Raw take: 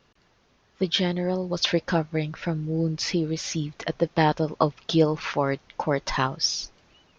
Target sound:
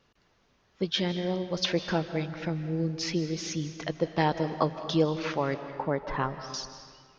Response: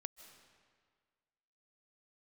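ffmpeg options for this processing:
-filter_complex "[0:a]asettb=1/sr,asplit=3[a][b][c];[a]atrim=end=5.544[d];[b]atrim=start=5.54:end=6.54,asetpts=PTS-STARTPTS,afade=t=in:d=0.004:c=qsin,afade=t=out:st=0.996:d=0.004:c=qsin,lowpass=1.8k[e];[c]atrim=start=6.536[f];[d][e]acrossfade=d=0.004:c1=hsin:c2=qsin[g];[g][f]acrossfade=d=0.004:c1=qsin:c2=hsin[h];[1:a]atrim=start_sample=2205[i];[h][i]afir=irnorm=-1:irlink=0"

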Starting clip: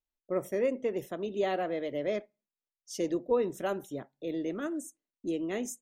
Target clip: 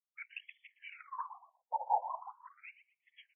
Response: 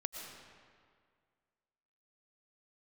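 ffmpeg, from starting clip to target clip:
-filter_complex "[0:a]asetrate=76440,aresample=44100,asubboost=boost=8.5:cutoff=240,asplit=3[a][b][c];[a]bandpass=f=300:t=q:w=8,volume=0dB[d];[b]bandpass=f=870:t=q:w=8,volume=-6dB[e];[c]bandpass=f=2.24k:t=q:w=8,volume=-9dB[f];[d][e][f]amix=inputs=3:normalize=0,equalizer=f=410:w=1.5:g=8,asplit=2[g][h];[h]adelay=118,lowpass=f=3.9k:p=1,volume=-14.5dB,asplit=2[i][j];[j]adelay=118,lowpass=f=3.9k:p=1,volume=0.28,asplit=2[k][l];[l]adelay=118,lowpass=f=3.9k:p=1,volume=0.28[m];[g][i][k][m]amix=inputs=4:normalize=0,afftfilt=real='hypot(re,im)*cos(2*PI*random(0))':imag='hypot(re,im)*sin(2*PI*random(1))':win_size=512:overlap=0.75,asoftclip=type=tanh:threshold=-36.5dB,afftfilt=real='re*between(b*sr/1024,670*pow(2500/670,0.5+0.5*sin(2*PI*0.41*pts/sr))/1.41,670*pow(2500/670,0.5+0.5*sin(2*PI*0.41*pts/sr))*1.41)':imag='im*between(b*sr/1024,670*pow(2500/670,0.5+0.5*sin(2*PI*0.41*pts/sr))/1.41,670*pow(2500/670,0.5+0.5*sin(2*PI*0.41*pts/sr))*1.41)':win_size=1024:overlap=0.75,volume=16dB"

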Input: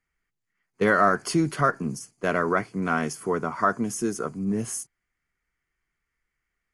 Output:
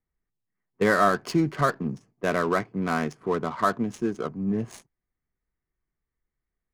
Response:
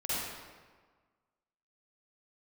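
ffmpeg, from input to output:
-af "adynamicsmooth=sensitivity=6.5:basefreq=1k,bandreject=f=1.4k:w=13"

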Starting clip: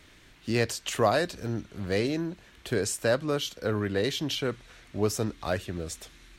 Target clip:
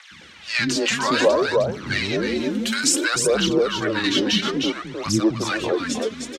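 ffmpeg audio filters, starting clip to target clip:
-filter_complex "[0:a]afreqshift=-100,asettb=1/sr,asplit=3[a][b][c];[a]atrim=end=2.304[d];[b]atrim=start=2.3:end=2.96,asetpts=PTS-STARTPTS,afade=t=in:d=0.004:c=qsin,afade=t=out:st=0.656:d=0.004:c=qsin,aemphasis=mode=production:type=bsi[e];[c]atrim=start=2.956[f];[d][e]acrossfade=d=0.004:c1=hsin:c2=qsin[g];[g][f]acrossfade=d=0.004:c1=qsin:c2=hsin,asplit=2[h][i];[i]aecho=0:1:309:0.501[j];[h][j]amix=inputs=2:normalize=0,aphaser=in_gain=1:out_gain=1:delay=4.9:decay=0.63:speed=0.59:type=triangular,highpass=190,lowpass=6.1k,acrossover=split=280|930[k][l][m];[k]adelay=110[n];[l]adelay=210[o];[n][o][m]amix=inputs=3:normalize=0,asplit=2[p][q];[q]acompressor=threshold=-33dB:ratio=6,volume=2dB[r];[p][r]amix=inputs=2:normalize=0,volume=4.5dB"

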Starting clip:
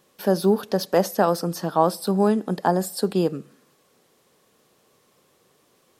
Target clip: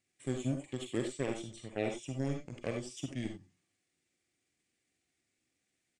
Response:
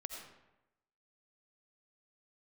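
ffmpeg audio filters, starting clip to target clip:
-filter_complex "[0:a]aeval=exprs='0.562*(cos(1*acos(clip(val(0)/0.562,-1,1)))-cos(1*PI/2))+0.0501*(cos(7*acos(clip(val(0)/0.562,-1,1)))-cos(7*PI/2))':c=same,asetrate=29433,aresample=44100,atempo=1.49831,equalizer=f=1k:t=o:w=1:g=-11,equalizer=f=2k:t=o:w=1:g=10,equalizer=f=8k:t=o:w=1:g=8[a];[1:a]atrim=start_sample=2205,afade=t=out:st=0.23:d=0.01,atrim=end_sample=10584,asetrate=79380,aresample=44100[b];[a][b]afir=irnorm=-1:irlink=0,volume=-5.5dB"

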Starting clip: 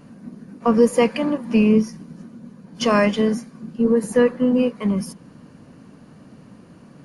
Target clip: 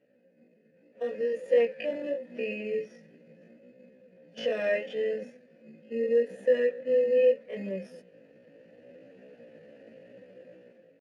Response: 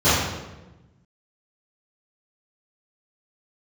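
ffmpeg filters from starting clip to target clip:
-filter_complex "[0:a]acrossover=split=1200[a][b];[a]alimiter=limit=-13dB:level=0:latency=1:release=161[c];[c][b]amix=inputs=2:normalize=0,dynaudnorm=f=420:g=3:m=16dB,asplit=2[d][e];[e]acrusher=samples=19:mix=1:aa=0.000001,volume=-9dB[f];[d][f]amix=inputs=2:normalize=0,asplit=3[g][h][i];[g]bandpass=f=530:t=q:w=8,volume=0dB[j];[h]bandpass=f=1.84k:t=q:w=8,volume=-6dB[k];[i]bandpass=f=2.48k:t=q:w=8,volume=-9dB[l];[j][k][l]amix=inputs=3:normalize=0,flanger=delay=15.5:depth=2.7:speed=1.2,atempo=0.64,volume=-5dB"

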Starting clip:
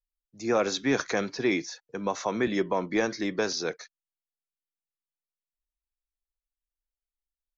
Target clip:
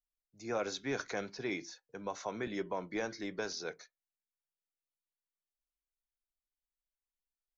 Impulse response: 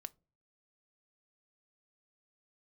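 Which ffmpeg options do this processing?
-filter_complex "[1:a]atrim=start_sample=2205,afade=t=out:st=0.32:d=0.01,atrim=end_sample=14553,asetrate=88200,aresample=44100[a];[0:a][a]afir=irnorm=-1:irlink=0,volume=1dB"

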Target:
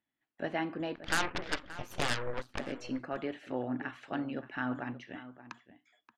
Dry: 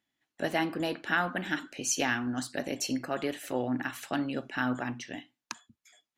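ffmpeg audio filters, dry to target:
-filter_complex "[0:a]lowpass=2.6k,asplit=3[a][b][c];[a]afade=t=out:st=0.95:d=0.02[d];[b]aeval=exprs='0.178*(cos(1*acos(clip(val(0)/0.178,-1,1)))-cos(1*PI/2))+0.0355*(cos(7*acos(clip(val(0)/0.178,-1,1)))-cos(7*PI/2))+0.0501*(cos(8*acos(clip(val(0)/0.178,-1,1)))-cos(8*PI/2))':c=same,afade=t=in:st=0.95:d=0.02,afade=t=out:st=2.58:d=0.02[e];[c]afade=t=in:st=2.58:d=0.02[f];[d][e][f]amix=inputs=3:normalize=0,asplit=2[g][h];[h]adelay=577.3,volume=-14dB,highshelf=f=4k:g=-13[i];[g][i]amix=inputs=2:normalize=0,volume=-4.5dB"

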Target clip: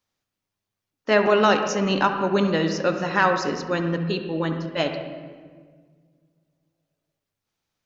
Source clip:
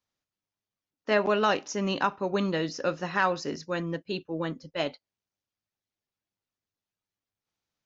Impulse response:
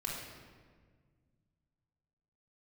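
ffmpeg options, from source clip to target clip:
-filter_complex "[0:a]asplit=2[a][b];[1:a]atrim=start_sample=2205,lowpass=3.2k,adelay=68[c];[b][c]afir=irnorm=-1:irlink=0,volume=-8dB[d];[a][d]amix=inputs=2:normalize=0,volume=5.5dB"

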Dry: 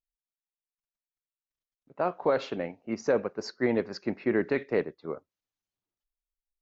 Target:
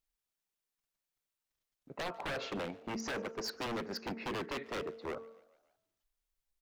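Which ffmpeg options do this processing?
-filter_complex "[0:a]asettb=1/sr,asplit=3[a][b][c];[a]atrim=end=2.974[d];[b]atrim=start=2.97:end=5.14,asetpts=PTS-STARTPTS,afade=t=in:d=0.004:c=qsin,afade=t=out:st=2.166:d=0.004:c=qsin,highpass=130[e];[c]atrim=start=5.136[f];[d][e]acrossfade=d=0.004:c1=hsin:c2=qsin[g];[g][f]acrossfade=d=0.004:c1=qsin:c2=hsin,bandreject=f=226.1:t=h:w=4,bandreject=f=452.2:t=h:w=4,bandreject=f=678.3:t=h:w=4,bandreject=f=904.4:t=h:w=4,bandreject=f=1.1305k:t=h:w=4,bandreject=f=1.3566k:t=h:w=4,acompressor=threshold=-38dB:ratio=2.5,aeval=exprs='0.0133*(abs(mod(val(0)/0.0133+3,4)-2)-1)':c=same,asplit=5[h][i][j][k][l];[i]adelay=145,afreqshift=50,volume=-23.5dB[m];[j]adelay=290,afreqshift=100,volume=-28.4dB[n];[k]adelay=435,afreqshift=150,volume=-33.3dB[o];[l]adelay=580,afreqshift=200,volume=-38.1dB[p];[h][m][n][o][p]amix=inputs=5:normalize=0,volume=5.5dB"

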